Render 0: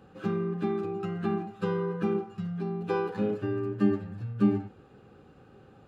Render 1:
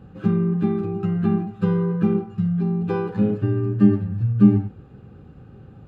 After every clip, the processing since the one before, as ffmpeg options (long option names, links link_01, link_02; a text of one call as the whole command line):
ffmpeg -i in.wav -af "bass=frequency=250:gain=14,treble=frequency=4000:gain=-5,volume=1.5dB" out.wav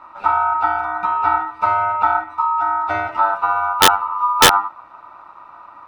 ffmpeg -i in.wav -af "aeval=exprs='val(0)*sin(2*PI*1100*n/s)':channel_layout=same,bandreject=frequency=1600:width=8.9,aeval=exprs='(mod(2.37*val(0)+1,2)-1)/2.37':channel_layout=same,volume=6dB" out.wav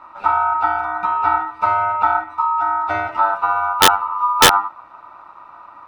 ffmpeg -i in.wav -af anull out.wav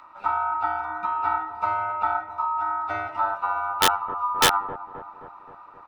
ffmpeg -i in.wav -filter_complex "[0:a]acrossover=split=1200[link_01][link_02];[link_01]aecho=1:1:263|526|789|1052|1315|1578|1841:0.282|0.169|0.101|0.0609|0.0365|0.0219|0.0131[link_03];[link_02]acompressor=mode=upward:threshold=-42dB:ratio=2.5[link_04];[link_03][link_04]amix=inputs=2:normalize=0,volume=-8dB" out.wav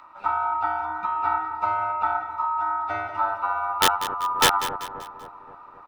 ffmpeg -i in.wav -af "aecho=1:1:193|386|579|772:0.237|0.0972|0.0399|0.0163" out.wav